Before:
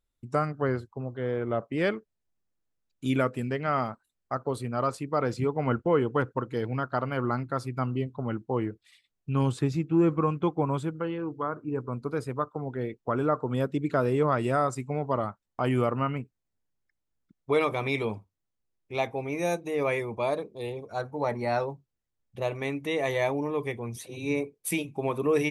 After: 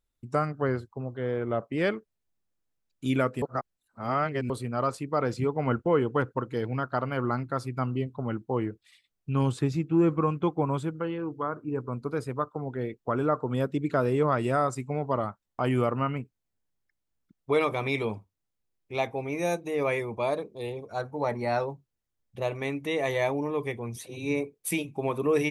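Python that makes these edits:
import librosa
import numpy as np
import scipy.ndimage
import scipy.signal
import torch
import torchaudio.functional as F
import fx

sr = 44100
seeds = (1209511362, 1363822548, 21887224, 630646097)

y = fx.edit(x, sr, fx.reverse_span(start_s=3.42, length_s=1.08), tone=tone)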